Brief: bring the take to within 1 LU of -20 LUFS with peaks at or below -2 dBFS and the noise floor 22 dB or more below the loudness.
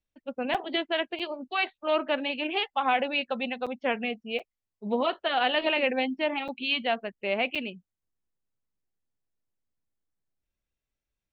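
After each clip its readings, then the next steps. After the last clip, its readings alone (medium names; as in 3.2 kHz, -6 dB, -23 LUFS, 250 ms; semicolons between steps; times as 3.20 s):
dropouts 6; longest dropout 6.3 ms; loudness -28.5 LUFS; peak level -11.5 dBFS; loudness target -20.0 LUFS
-> interpolate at 0.54/1.19/3.66/4.39/6.48/7.55 s, 6.3 ms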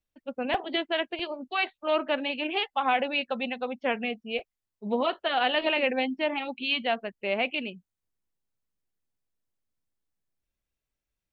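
dropouts 0; loudness -28.5 LUFS; peak level -11.5 dBFS; loudness target -20.0 LUFS
-> trim +8.5 dB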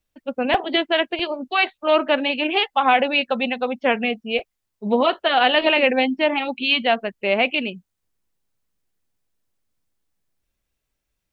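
loudness -20.0 LUFS; peak level -3.0 dBFS; noise floor -79 dBFS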